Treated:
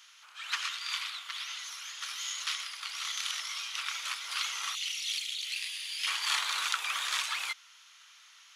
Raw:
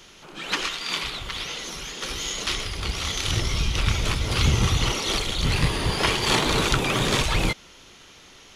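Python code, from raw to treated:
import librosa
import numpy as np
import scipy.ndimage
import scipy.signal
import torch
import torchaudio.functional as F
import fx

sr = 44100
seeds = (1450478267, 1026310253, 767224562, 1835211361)

y = fx.cheby1_highpass(x, sr, hz=fx.steps((0.0, 1200.0), (4.74, 2500.0), (6.06, 1200.0)), order=3)
y = y * librosa.db_to_amplitude(-6.0)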